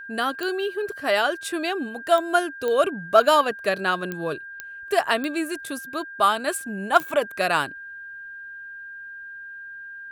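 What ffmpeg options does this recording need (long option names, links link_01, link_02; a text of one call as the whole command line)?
ffmpeg -i in.wav -af "adeclick=threshold=4,bandreject=frequency=1600:width=30" out.wav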